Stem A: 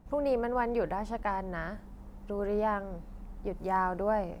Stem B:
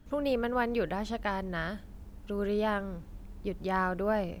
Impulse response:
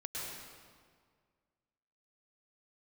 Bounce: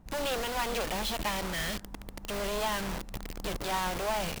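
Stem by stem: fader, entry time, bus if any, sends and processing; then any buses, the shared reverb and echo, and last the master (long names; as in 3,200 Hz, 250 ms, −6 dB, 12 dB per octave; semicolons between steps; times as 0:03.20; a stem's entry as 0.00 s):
+2.0 dB, 0.00 s, no send, parametric band 460 Hz −3.5 dB 1.8 octaves
−3.5 dB, 0.00 s, polarity flipped, no send, flat-topped bell 3,400 Hz +8.5 dB; log-companded quantiser 2 bits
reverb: not used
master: no processing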